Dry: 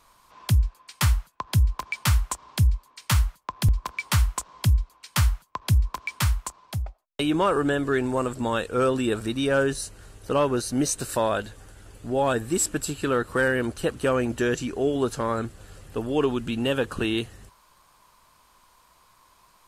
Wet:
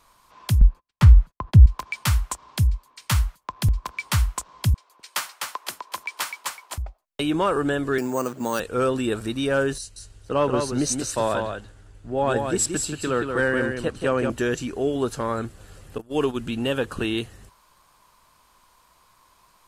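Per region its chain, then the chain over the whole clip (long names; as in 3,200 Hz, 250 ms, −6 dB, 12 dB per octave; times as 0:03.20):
0:00.61–0:01.66: RIAA equalisation playback + noise gate −45 dBFS, range −36 dB + downward compressor 2 to 1, threshold −10 dBFS
0:04.74–0:06.78: high-pass filter 370 Hz 24 dB per octave + echo with shifted repeats 253 ms, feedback 31%, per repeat −36 Hz, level −4 dB
0:07.98–0:08.60: high-pass filter 140 Hz 24 dB per octave + bad sample-rate conversion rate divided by 6×, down filtered, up hold
0:09.78–0:14.30: low-pass filter 8,600 Hz + single-tap delay 180 ms −4.5 dB + multiband upward and downward expander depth 40%
0:15.98–0:16.38: noise gate −27 dBFS, range −22 dB + high-shelf EQ 7,200 Hz +9 dB
whole clip: no processing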